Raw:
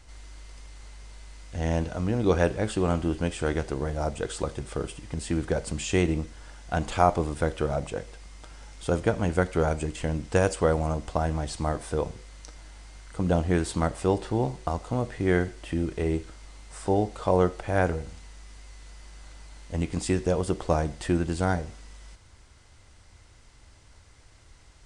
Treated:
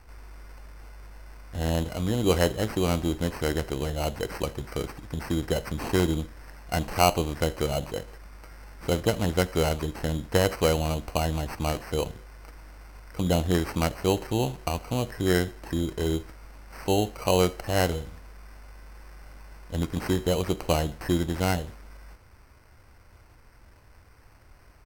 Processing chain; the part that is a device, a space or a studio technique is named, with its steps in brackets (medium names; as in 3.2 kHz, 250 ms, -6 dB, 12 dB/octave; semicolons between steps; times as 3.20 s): crushed at another speed (playback speed 1.25×; sample-and-hold 10×; playback speed 0.8×)